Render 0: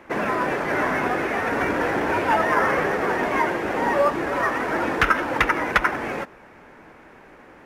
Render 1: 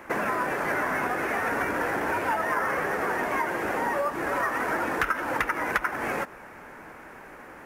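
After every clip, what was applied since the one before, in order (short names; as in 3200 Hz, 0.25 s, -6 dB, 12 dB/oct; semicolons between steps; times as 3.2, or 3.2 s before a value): compressor, threshold -27 dBFS, peak gain reduction 13.5 dB; EQ curve 370 Hz 0 dB, 1500 Hz +5 dB, 3600 Hz -1 dB, 12000 Hz +12 dB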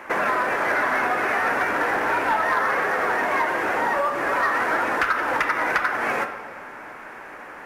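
on a send at -7 dB: reverb RT60 1.6 s, pre-delay 8 ms; on the sum: overdrive pedal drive 12 dB, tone 4100 Hz, clips at -10 dBFS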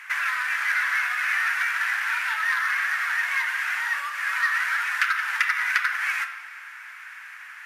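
inverse Chebyshev high-pass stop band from 270 Hz, stop band 80 dB; gain +3.5 dB; Vorbis 128 kbps 32000 Hz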